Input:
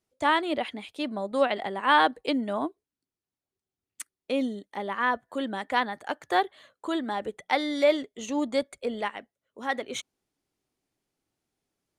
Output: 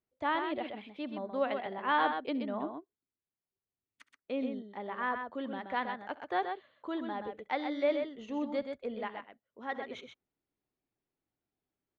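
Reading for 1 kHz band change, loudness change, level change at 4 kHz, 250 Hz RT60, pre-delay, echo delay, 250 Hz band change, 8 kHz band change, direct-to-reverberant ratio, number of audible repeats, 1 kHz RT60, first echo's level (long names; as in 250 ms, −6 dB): −7.0 dB, −7.5 dB, −12.0 dB, no reverb audible, no reverb audible, 68 ms, −6.5 dB, below −25 dB, no reverb audible, 2, no reverb audible, −19.0 dB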